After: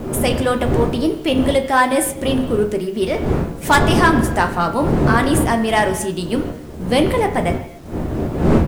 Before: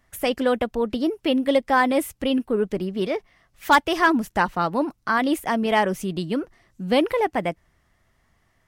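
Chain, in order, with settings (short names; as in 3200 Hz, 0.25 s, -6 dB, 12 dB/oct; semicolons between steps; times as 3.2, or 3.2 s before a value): wind noise 300 Hz -25 dBFS; bell 9000 Hz +11.5 dB 0.82 oct; notches 50/100/150/200/250 Hz; sample leveller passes 1; early reflections 13 ms -10.5 dB, 34 ms -15.5 dB; on a send at -7 dB: reverb, pre-delay 3 ms; on the sum: requantised 8-bit, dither none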